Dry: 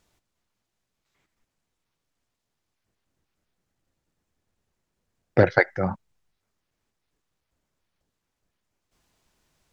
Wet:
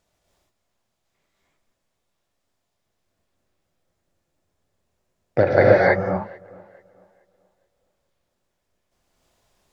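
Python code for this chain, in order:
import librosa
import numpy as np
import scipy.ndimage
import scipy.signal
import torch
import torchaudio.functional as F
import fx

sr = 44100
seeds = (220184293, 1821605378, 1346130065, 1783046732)

p1 = fx.peak_eq(x, sr, hz=620.0, db=7.5, octaves=0.54)
p2 = p1 + fx.echo_tape(p1, sr, ms=435, feedback_pct=34, wet_db=-22, lp_hz=2400.0, drive_db=4.0, wow_cents=24, dry=0)
p3 = fx.rev_gated(p2, sr, seeds[0], gate_ms=340, shape='rising', drr_db=-6.0)
y = p3 * 10.0 ** (-4.0 / 20.0)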